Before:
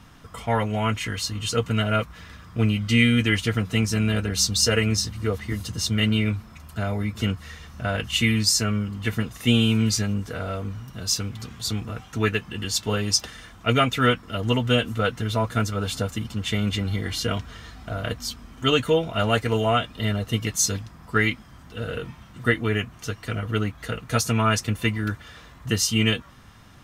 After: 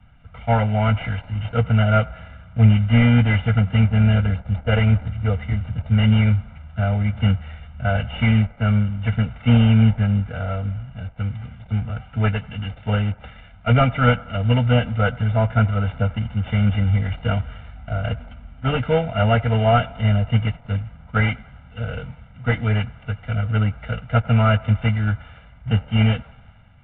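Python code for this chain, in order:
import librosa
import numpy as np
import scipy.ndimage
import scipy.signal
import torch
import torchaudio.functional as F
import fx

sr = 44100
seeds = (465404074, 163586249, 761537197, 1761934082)

p1 = fx.cvsd(x, sr, bps=16000)
p2 = fx.low_shelf(p1, sr, hz=260.0, db=6.0)
p3 = p2 + 0.85 * np.pad(p2, (int(1.4 * sr / 1000.0), 0))[:len(p2)]
p4 = p3 + fx.echo_banded(p3, sr, ms=96, feedback_pct=83, hz=940.0, wet_db=-21.0, dry=0)
y = fx.band_widen(p4, sr, depth_pct=40)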